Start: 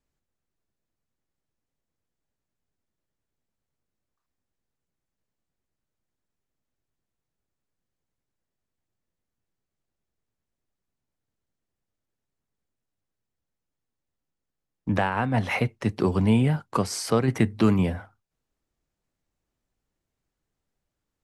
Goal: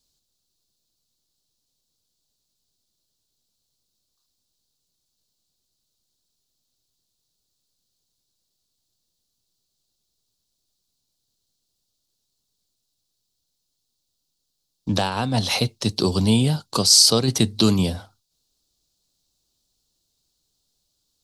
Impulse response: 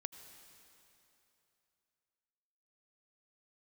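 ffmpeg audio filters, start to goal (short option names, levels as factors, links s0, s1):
-af "highshelf=f=2900:t=q:w=3:g=13,volume=1.26"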